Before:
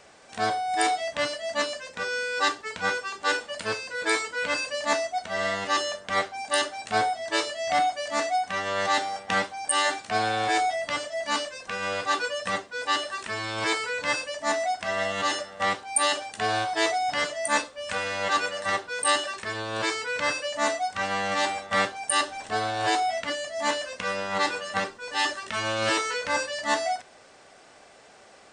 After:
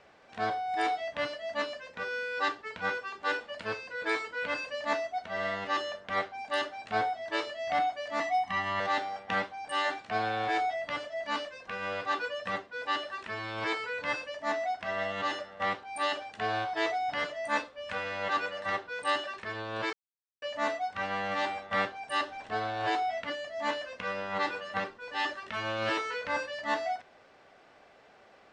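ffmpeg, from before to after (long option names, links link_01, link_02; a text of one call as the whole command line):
ffmpeg -i in.wav -filter_complex "[0:a]asettb=1/sr,asplit=3[link_01][link_02][link_03];[link_01]atrim=end=8.204[link_04];[link_02]atrim=start=8.2:end=8.8,asetpts=PTS-STARTPTS,afade=type=in:duration=0.004:curve=qsin,afade=type=out:start_time=0.596:duration=0.004:curve=qsin,aecho=1:1:1:0.97,atrim=end_sample=26460[link_05];[link_03]atrim=start=8.796[link_06];[link_04][link_05]acrossfade=duration=0.004:curve1=hsin:curve2=qsin[link_07];[link_07][link_06]acrossfade=duration=0.004:curve1=qsin:curve2=hsin,asplit=3[link_08][link_09][link_10];[link_08]atrim=end=19.93,asetpts=PTS-STARTPTS,afade=type=out:start_time=19.926:duration=0.004:curve=hsin[link_11];[link_09]atrim=start=19.93:end=20.42,asetpts=PTS-STARTPTS,volume=0[link_12];[link_10]atrim=start=20.42,asetpts=PTS-STARTPTS,afade=type=in:duration=0.004:curve=hsin[link_13];[link_11][link_12][link_13]concat=n=3:v=0:a=1,lowpass=3300,volume=-5dB" out.wav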